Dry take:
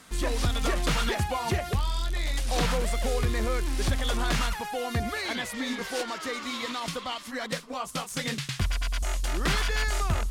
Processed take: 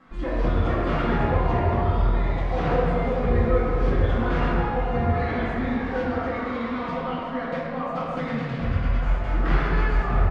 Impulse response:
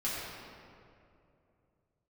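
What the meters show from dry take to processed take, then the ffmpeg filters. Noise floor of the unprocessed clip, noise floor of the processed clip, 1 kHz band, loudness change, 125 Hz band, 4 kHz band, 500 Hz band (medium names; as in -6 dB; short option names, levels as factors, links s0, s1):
-40 dBFS, -31 dBFS, +5.5 dB, +4.5 dB, +7.0 dB, -10.5 dB, +7.5 dB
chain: -filter_complex "[0:a]lowpass=1500,asplit=2[s0][s1];[s1]adelay=1050,volume=0.316,highshelf=f=4000:g=-23.6[s2];[s0][s2]amix=inputs=2:normalize=0[s3];[1:a]atrim=start_sample=2205[s4];[s3][s4]afir=irnorm=-1:irlink=0"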